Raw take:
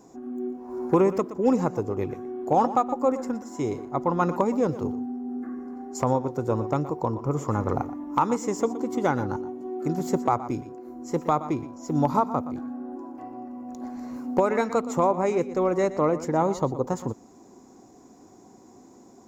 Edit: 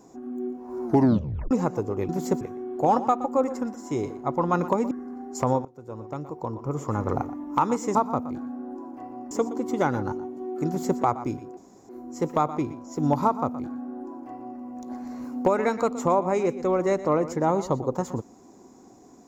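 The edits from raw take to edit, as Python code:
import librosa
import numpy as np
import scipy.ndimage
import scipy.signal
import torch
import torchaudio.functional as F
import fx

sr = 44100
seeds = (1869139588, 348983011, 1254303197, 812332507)

y = fx.edit(x, sr, fx.tape_stop(start_s=0.85, length_s=0.66),
    fx.cut(start_s=4.59, length_s=0.92),
    fx.fade_in_from(start_s=6.25, length_s=1.54, floor_db=-23.0),
    fx.duplicate(start_s=9.91, length_s=0.32, to_s=2.09),
    fx.insert_room_tone(at_s=10.81, length_s=0.32),
    fx.duplicate(start_s=12.16, length_s=1.36, to_s=8.55), tone=tone)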